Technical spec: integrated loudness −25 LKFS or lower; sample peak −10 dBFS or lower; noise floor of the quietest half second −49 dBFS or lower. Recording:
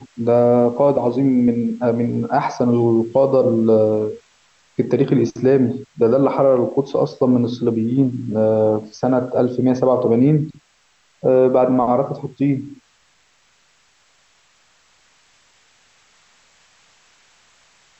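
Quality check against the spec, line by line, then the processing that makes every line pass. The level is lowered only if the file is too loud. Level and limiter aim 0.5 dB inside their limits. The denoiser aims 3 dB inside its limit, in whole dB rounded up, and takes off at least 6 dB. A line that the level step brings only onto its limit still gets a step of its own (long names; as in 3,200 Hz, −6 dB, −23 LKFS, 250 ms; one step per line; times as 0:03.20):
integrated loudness −17.5 LKFS: out of spec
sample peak −5.0 dBFS: out of spec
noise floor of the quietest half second −59 dBFS: in spec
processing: level −8 dB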